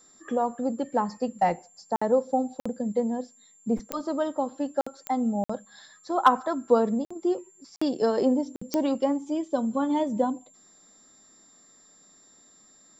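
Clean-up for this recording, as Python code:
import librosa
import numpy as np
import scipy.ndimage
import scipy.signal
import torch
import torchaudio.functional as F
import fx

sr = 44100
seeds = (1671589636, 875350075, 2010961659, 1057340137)

y = fx.fix_declip(x, sr, threshold_db=-7.5)
y = fx.fix_declick_ar(y, sr, threshold=10.0)
y = fx.notch(y, sr, hz=7300.0, q=30.0)
y = fx.fix_interpolate(y, sr, at_s=(1.96, 2.6, 4.81, 5.44, 7.05, 7.76, 8.56), length_ms=55.0)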